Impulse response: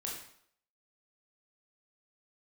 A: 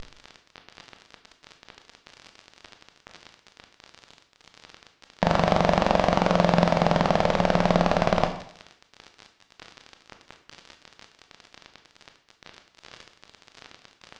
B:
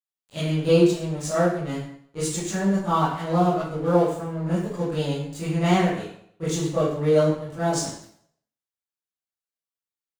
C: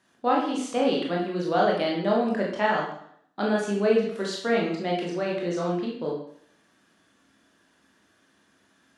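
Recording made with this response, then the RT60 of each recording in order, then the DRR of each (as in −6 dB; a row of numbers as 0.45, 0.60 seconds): C; 0.65, 0.65, 0.65 seconds; 5.5, −12.5, −3.0 decibels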